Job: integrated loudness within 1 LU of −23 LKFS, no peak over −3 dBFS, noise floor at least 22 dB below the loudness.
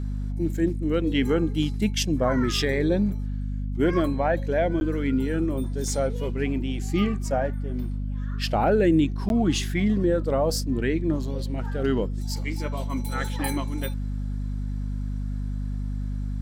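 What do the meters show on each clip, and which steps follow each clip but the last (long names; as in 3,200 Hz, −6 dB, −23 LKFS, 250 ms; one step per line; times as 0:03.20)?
number of dropouts 2; longest dropout 11 ms; mains hum 50 Hz; hum harmonics up to 250 Hz; level of the hum −26 dBFS; integrated loudness −26.0 LKFS; sample peak −9.5 dBFS; target loudness −23.0 LKFS
→ repair the gap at 0:04.80/0:09.29, 11 ms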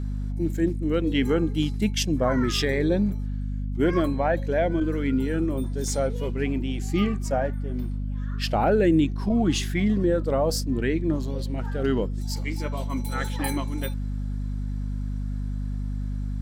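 number of dropouts 0; mains hum 50 Hz; hum harmonics up to 250 Hz; level of the hum −26 dBFS
→ mains-hum notches 50/100/150/200/250 Hz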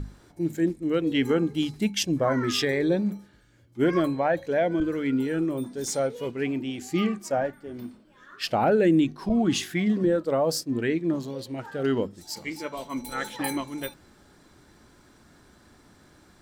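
mains hum none found; integrated loudness −26.5 LKFS; sample peak −12.0 dBFS; target loudness −23.0 LKFS
→ level +3.5 dB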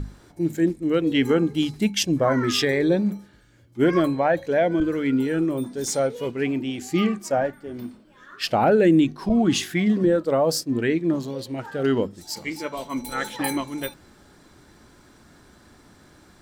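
integrated loudness −23.0 LKFS; sample peak −8.5 dBFS; background noise floor −54 dBFS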